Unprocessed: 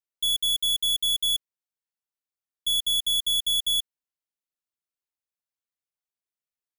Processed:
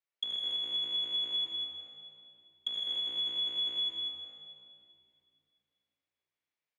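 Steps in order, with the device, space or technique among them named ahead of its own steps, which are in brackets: low-pass that closes with the level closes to 1.7 kHz, closed at -27.5 dBFS; station announcement (band-pass 310–4000 Hz; peaking EQ 2.2 kHz +5 dB 0.46 oct; loudspeakers at several distances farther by 27 m -10 dB, 97 m -9 dB; reverberation RT60 2.6 s, pre-delay 66 ms, DRR -1 dB)

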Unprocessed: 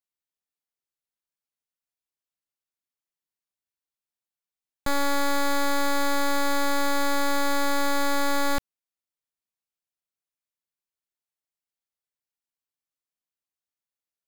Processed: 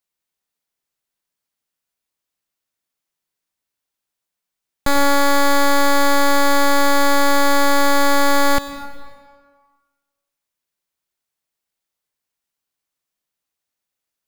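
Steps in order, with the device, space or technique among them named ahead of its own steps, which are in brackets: compressed reverb return (on a send at -4 dB: reverberation RT60 1.5 s, pre-delay 85 ms + compression 10:1, threshold -31 dBFS, peak gain reduction 10 dB); on the sum: trim +8.5 dB

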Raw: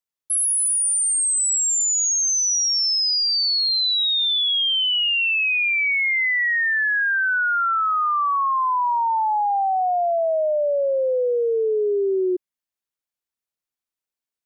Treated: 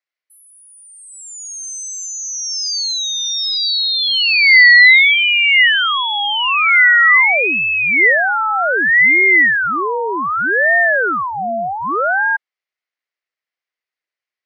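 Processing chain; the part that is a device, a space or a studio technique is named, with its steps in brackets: voice changer toy (ring modulator with a swept carrier 740 Hz, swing 70%, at 0.65 Hz; cabinet simulation 470–4900 Hz, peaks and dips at 890 Hz -6 dB, 2 kHz +9 dB, 3.6 kHz -4 dB); 3.62–5.14 s: peaking EQ 1.5 kHz +4 dB 1.6 oct; trim +8.5 dB

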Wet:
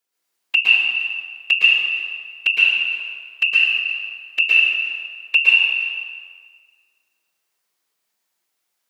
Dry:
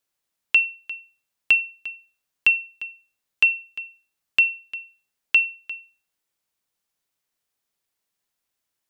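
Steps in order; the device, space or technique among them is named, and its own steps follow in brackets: whispering ghost (whisper effect; high-pass 350 Hz 6 dB/octave; reverberation RT60 1.7 s, pre-delay 107 ms, DRR -7 dB)

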